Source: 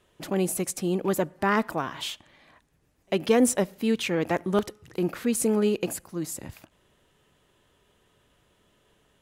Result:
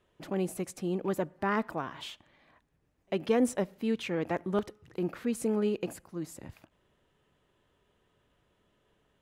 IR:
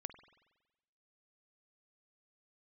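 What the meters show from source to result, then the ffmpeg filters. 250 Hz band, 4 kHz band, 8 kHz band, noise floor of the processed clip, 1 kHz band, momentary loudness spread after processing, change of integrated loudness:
−5.5 dB, −9.5 dB, −13.5 dB, −73 dBFS, −6.0 dB, 13 LU, −6.0 dB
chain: -af "highshelf=frequency=4300:gain=-10,volume=-5.5dB"

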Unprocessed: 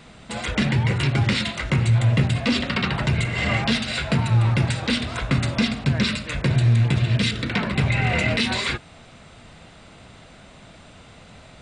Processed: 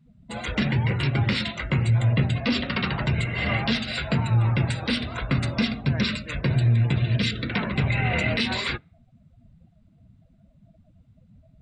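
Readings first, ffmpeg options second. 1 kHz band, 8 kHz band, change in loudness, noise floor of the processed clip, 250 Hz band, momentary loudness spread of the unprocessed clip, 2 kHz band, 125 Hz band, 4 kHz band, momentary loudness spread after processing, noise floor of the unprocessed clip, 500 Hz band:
−3.0 dB, −9.0 dB, −2.5 dB, −59 dBFS, −2.5 dB, 6 LU, −3.0 dB, −2.5 dB, −3.5 dB, 6 LU, −47 dBFS, −2.5 dB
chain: -af "afftdn=noise_reduction=30:noise_floor=-36,volume=-2.5dB"

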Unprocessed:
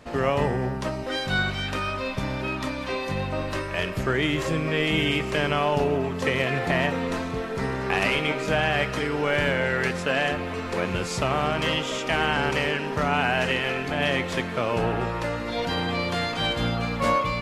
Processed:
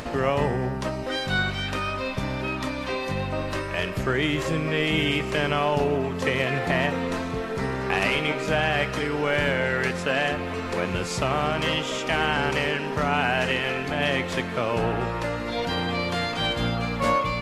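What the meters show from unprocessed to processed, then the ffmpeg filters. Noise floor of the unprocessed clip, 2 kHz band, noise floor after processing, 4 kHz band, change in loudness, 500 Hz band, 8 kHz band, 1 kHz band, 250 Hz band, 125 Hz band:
−32 dBFS, 0.0 dB, −31 dBFS, 0.0 dB, 0.0 dB, 0.0 dB, 0.0 dB, 0.0 dB, 0.0 dB, 0.0 dB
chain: -af "acompressor=mode=upward:threshold=-26dB:ratio=2.5"

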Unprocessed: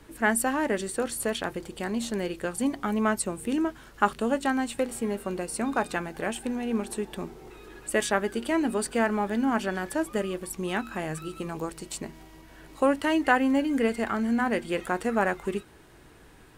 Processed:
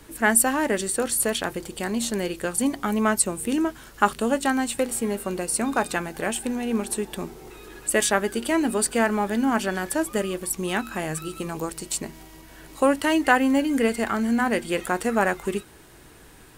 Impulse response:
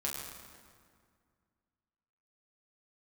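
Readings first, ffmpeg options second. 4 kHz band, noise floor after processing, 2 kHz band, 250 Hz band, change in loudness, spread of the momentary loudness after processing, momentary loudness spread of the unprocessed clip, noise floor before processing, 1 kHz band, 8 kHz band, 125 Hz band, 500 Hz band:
+5.5 dB, −48 dBFS, +4.0 dB, +3.0 dB, +4.0 dB, 11 LU, 10 LU, −52 dBFS, +3.5 dB, +10.0 dB, +3.0 dB, +3.0 dB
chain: -af "highshelf=frequency=5200:gain=9,volume=3dB"

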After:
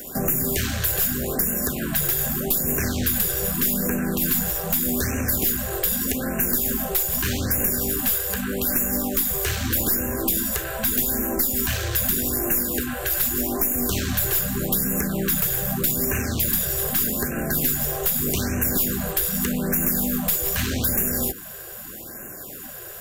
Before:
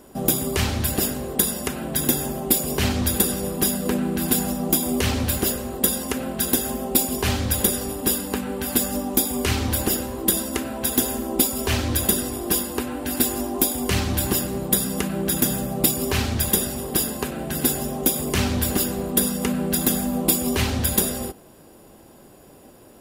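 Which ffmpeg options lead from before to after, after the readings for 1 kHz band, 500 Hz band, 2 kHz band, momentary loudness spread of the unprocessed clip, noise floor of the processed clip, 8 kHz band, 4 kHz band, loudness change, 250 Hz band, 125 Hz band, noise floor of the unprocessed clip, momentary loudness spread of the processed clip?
−3.5 dB, −2.5 dB, +1.5 dB, 4 LU, −37 dBFS, −1.5 dB, −3.5 dB, +0.5 dB, −2.5 dB, −1.5 dB, −48 dBFS, 4 LU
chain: -filter_complex "[0:a]equalizer=frequency=1600:width_type=o:width=0.33:gain=11,equalizer=frequency=5000:width_type=o:width=0.33:gain=-5,equalizer=frequency=10000:width_type=o:width=0.33:gain=-10,acrossover=split=160|560[link_01][link_02][link_03];[link_01]acompressor=threshold=-32dB:ratio=4[link_04];[link_02]acompressor=threshold=-32dB:ratio=4[link_05];[link_03]acompressor=threshold=-38dB:ratio=4[link_06];[link_04][link_05][link_06]amix=inputs=3:normalize=0,crystalizer=i=4:c=0,tremolo=f=240:d=0.462,aeval=exprs='(tanh(17.8*val(0)+0.25)-tanh(0.25))/17.8':channel_layout=same,asuperstop=centerf=880:order=4:qfactor=6.2,afftfilt=real='re*(1-between(b*sr/1024,220*pow(4100/220,0.5+0.5*sin(2*PI*0.82*pts/sr))/1.41,220*pow(4100/220,0.5+0.5*sin(2*PI*0.82*pts/sr))*1.41))':imag='im*(1-between(b*sr/1024,220*pow(4100/220,0.5+0.5*sin(2*PI*0.82*pts/sr))/1.41,220*pow(4100/220,0.5+0.5*sin(2*PI*0.82*pts/sr))*1.41))':win_size=1024:overlap=0.75,volume=8.5dB"

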